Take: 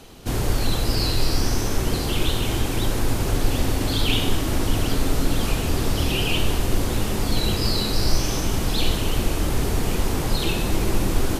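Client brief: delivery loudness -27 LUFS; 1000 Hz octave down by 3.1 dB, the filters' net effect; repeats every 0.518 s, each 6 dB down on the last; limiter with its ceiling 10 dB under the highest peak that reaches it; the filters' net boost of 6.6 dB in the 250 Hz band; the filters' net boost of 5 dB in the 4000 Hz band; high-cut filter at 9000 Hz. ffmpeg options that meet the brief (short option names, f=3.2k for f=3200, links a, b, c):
-af "lowpass=9k,equalizer=f=250:t=o:g=8.5,equalizer=f=1k:t=o:g=-5,equalizer=f=4k:t=o:g=6.5,alimiter=limit=-14dB:level=0:latency=1,aecho=1:1:518|1036|1554|2072|2590|3108:0.501|0.251|0.125|0.0626|0.0313|0.0157,volume=-4dB"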